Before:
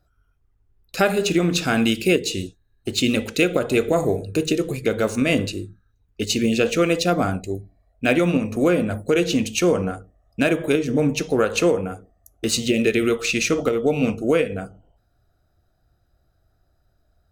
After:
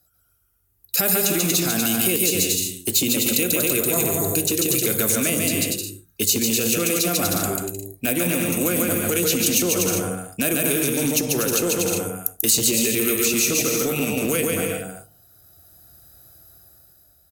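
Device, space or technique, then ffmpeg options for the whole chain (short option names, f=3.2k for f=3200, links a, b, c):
FM broadcast chain: -filter_complex "[0:a]highpass=70,aecho=1:1:140|238|306.6|354.6|388.2:0.631|0.398|0.251|0.158|0.1,dynaudnorm=f=110:g=17:m=11.5dB,acrossover=split=360|1100|7200[a][b][c][d];[a]acompressor=threshold=-19dB:ratio=4[e];[b]acompressor=threshold=-24dB:ratio=4[f];[c]acompressor=threshold=-26dB:ratio=4[g];[d]acompressor=threshold=-40dB:ratio=4[h];[e][f][g][h]amix=inputs=4:normalize=0,aemphasis=mode=production:type=50fm,alimiter=limit=-11dB:level=0:latency=1:release=30,asoftclip=type=hard:threshold=-14dB,lowpass=f=15k:w=0.5412,lowpass=f=15k:w=1.3066,aemphasis=mode=production:type=50fm,volume=-2.5dB"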